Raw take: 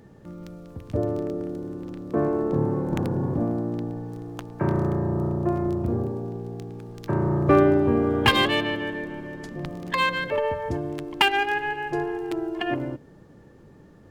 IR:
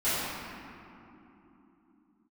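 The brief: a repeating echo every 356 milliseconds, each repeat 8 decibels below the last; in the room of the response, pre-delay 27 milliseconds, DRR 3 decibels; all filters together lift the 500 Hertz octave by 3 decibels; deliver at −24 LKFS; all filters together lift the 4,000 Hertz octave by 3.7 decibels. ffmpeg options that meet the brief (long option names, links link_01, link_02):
-filter_complex "[0:a]equalizer=frequency=500:width_type=o:gain=4,equalizer=frequency=4000:width_type=o:gain=5.5,aecho=1:1:356|712|1068|1424|1780:0.398|0.159|0.0637|0.0255|0.0102,asplit=2[link_01][link_02];[1:a]atrim=start_sample=2205,adelay=27[link_03];[link_02][link_03]afir=irnorm=-1:irlink=0,volume=-16dB[link_04];[link_01][link_04]amix=inputs=2:normalize=0,volume=-3dB"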